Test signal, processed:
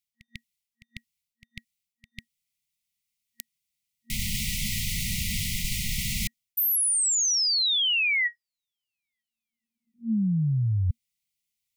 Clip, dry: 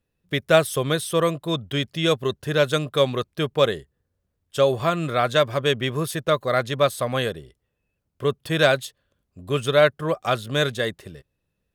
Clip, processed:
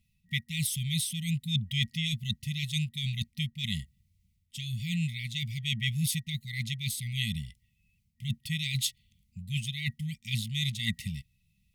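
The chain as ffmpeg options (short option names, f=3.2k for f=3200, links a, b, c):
-af "areverse,acompressor=threshold=-30dB:ratio=6,areverse,afftfilt=real='re*(1-between(b*sr/4096,230,1900))':imag='im*(1-between(b*sr/4096,230,1900))':win_size=4096:overlap=0.75,volume=6.5dB"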